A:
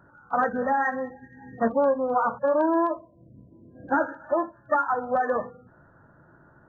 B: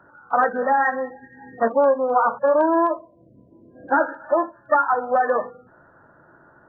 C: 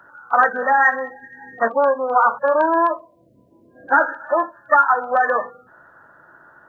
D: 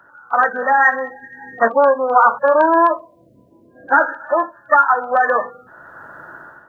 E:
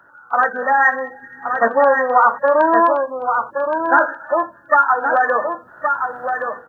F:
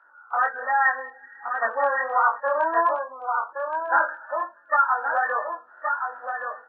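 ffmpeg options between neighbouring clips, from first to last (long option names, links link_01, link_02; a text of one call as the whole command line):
ffmpeg -i in.wav -filter_complex "[0:a]bass=frequency=250:gain=-10,treble=frequency=4000:gain=-11,acrossover=split=180[link_01][link_02];[link_01]acompressor=threshold=-58dB:ratio=6[link_03];[link_03][link_02]amix=inputs=2:normalize=0,volume=5.5dB" out.wav
ffmpeg -i in.wav -af "tiltshelf=frequency=970:gain=-8.5,volume=3.5dB" out.wav
ffmpeg -i in.wav -af "dynaudnorm=framelen=200:gausssize=5:maxgain=13.5dB,volume=-1dB" out.wav
ffmpeg -i in.wav -af "aecho=1:1:1121:0.501,volume=-1dB" out.wav
ffmpeg -i in.wav -af "flanger=delay=19.5:depth=5.4:speed=1.3,highpass=750,lowpass=2600,volume=-2.5dB" out.wav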